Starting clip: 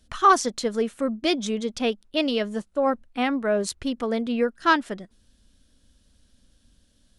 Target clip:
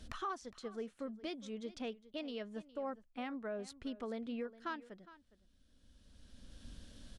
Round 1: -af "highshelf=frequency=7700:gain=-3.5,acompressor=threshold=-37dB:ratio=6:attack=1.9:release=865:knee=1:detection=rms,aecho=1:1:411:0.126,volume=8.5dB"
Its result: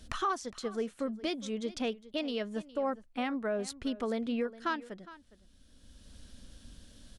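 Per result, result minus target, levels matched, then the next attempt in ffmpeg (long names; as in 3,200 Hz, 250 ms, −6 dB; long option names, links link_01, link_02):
downward compressor: peak gain reduction −8.5 dB; 8,000 Hz band +3.0 dB
-af "highshelf=frequency=7700:gain=-3.5,acompressor=threshold=-47.5dB:ratio=6:attack=1.9:release=865:knee=1:detection=rms,aecho=1:1:411:0.126,volume=8.5dB"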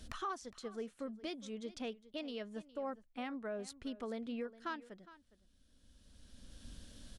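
8,000 Hz band +3.5 dB
-af "highshelf=frequency=7700:gain=-11.5,acompressor=threshold=-47.5dB:ratio=6:attack=1.9:release=865:knee=1:detection=rms,aecho=1:1:411:0.126,volume=8.5dB"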